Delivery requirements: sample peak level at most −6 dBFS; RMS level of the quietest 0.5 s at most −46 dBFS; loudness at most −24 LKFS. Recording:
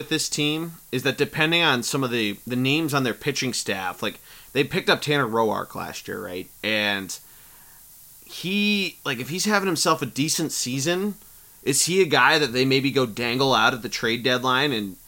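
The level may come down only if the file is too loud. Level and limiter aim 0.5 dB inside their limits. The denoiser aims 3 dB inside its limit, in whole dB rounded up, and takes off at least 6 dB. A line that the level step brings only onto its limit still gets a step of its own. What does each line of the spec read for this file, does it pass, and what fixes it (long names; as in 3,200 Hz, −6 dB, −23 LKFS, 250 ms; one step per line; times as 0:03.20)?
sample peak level −4.5 dBFS: out of spec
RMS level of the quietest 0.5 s −48 dBFS: in spec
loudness −22.5 LKFS: out of spec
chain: level −2 dB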